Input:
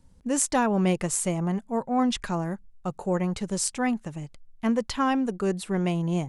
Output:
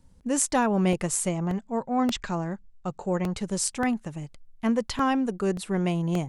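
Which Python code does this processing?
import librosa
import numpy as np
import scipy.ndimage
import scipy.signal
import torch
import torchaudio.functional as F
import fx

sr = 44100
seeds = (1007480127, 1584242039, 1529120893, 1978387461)

y = fx.ellip_lowpass(x, sr, hz=7900.0, order=4, stop_db=40, at=(1.29, 3.35))
y = fx.buffer_crackle(y, sr, first_s=0.93, period_s=0.58, block=64, kind='repeat')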